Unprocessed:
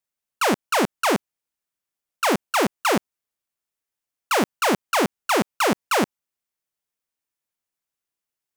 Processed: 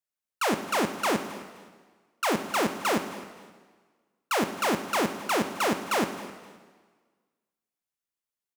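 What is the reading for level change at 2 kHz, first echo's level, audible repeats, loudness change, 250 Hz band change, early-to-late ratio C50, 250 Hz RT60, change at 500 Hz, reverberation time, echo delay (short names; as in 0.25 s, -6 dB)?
-5.0 dB, -18.5 dB, 2, -5.5 dB, -5.0 dB, 9.0 dB, 1.5 s, -5.5 dB, 1.5 s, 0.261 s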